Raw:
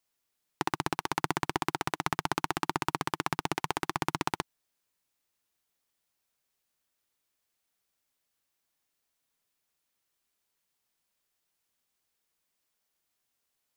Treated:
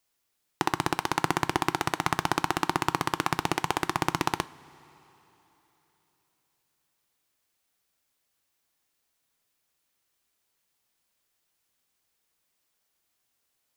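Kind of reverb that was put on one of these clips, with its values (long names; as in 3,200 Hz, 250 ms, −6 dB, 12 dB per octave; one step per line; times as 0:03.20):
coupled-rooms reverb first 0.27 s, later 3.8 s, from −18 dB, DRR 14.5 dB
level +4 dB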